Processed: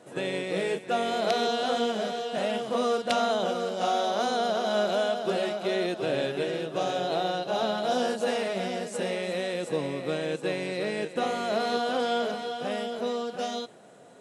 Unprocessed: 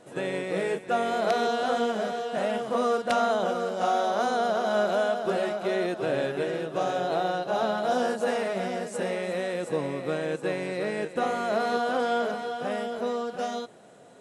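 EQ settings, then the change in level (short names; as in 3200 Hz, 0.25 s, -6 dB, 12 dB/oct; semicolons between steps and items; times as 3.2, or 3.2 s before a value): HPF 89 Hz; dynamic EQ 3300 Hz, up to +7 dB, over -48 dBFS, Q 0.83; dynamic EQ 1500 Hz, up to -5 dB, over -39 dBFS, Q 0.74; 0.0 dB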